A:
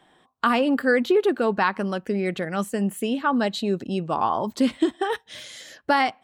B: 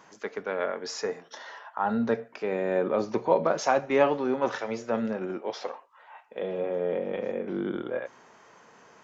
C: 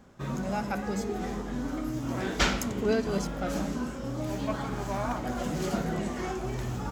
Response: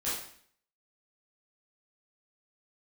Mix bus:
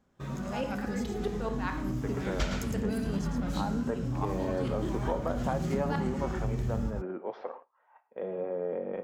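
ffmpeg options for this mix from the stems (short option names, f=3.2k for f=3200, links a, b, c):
-filter_complex "[0:a]aeval=exprs='val(0)*pow(10,-31*if(lt(mod(-4.7*n/s,1),2*abs(-4.7)/1000),1-mod(-4.7*n/s,1)/(2*abs(-4.7)/1000),(mod(-4.7*n/s,1)-2*abs(-4.7)/1000)/(1-2*abs(-4.7)/1000))/20)':c=same,volume=-8dB,asplit=2[a][b];[b]volume=-8.5dB[c];[1:a]lowpass=1.5k,adelay=1800,volume=-3.5dB,asplit=2[d][e];[e]volume=-18.5dB[f];[2:a]asubboost=boost=6:cutoff=210,volume=-5dB,asplit=2[g][h];[h]volume=-6dB[i];[3:a]atrim=start_sample=2205[j];[c][j]afir=irnorm=-1:irlink=0[k];[f][i]amix=inputs=2:normalize=0,aecho=0:1:110:1[l];[a][d][g][k][l]amix=inputs=5:normalize=0,agate=range=-10dB:threshold=-49dB:ratio=16:detection=peak,acompressor=threshold=-28dB:ratio=3"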